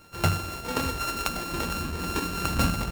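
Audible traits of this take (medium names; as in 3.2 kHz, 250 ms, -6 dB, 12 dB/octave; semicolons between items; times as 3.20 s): a buzz of ramps at a fixed pitch in blocks of 32 samples; Nellymoser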